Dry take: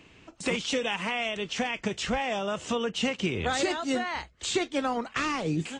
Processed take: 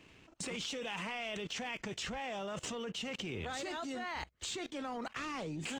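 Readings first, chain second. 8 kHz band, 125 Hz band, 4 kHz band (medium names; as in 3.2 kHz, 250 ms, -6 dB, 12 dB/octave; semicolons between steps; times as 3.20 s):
-7.5 dB, -10.5 dB, -8.5 dB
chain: waveshaping leveller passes 1; level held to a coarse grid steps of 20 dB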